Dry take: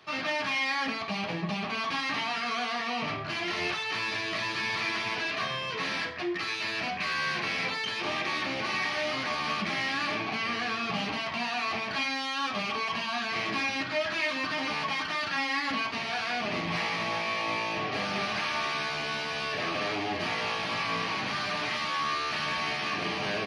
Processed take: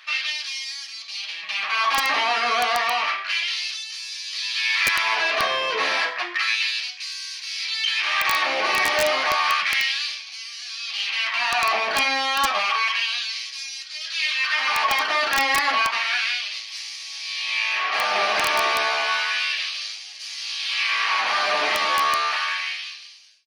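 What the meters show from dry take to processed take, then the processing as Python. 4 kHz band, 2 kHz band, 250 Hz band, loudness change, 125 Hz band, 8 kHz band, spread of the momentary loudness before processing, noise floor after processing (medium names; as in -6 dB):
+9.0 dB, +7.5 dB, -8.0 dB, +8.0 dB, under -10 dB, +11.5 dB, 2 LU, -38 dBFS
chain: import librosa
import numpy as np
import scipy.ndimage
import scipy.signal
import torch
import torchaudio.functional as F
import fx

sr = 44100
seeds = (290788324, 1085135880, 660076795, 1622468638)

y = fx.fade_out_tail(x, sr, length_s=1.52)
y = fx.filter_lfo_highpass(y, sr, shape='sine', hz=0.31, low_hz=470.0, high_hz=6100.0, q=1.3)
y = (np.mod(10.0 ** (19.5 / 20.0) * y + 1.0, 2.0) - 1.0) / 10.0 ** (19.5 / 20.0)
y = y * 10.0 ** (9.0 / 20.0)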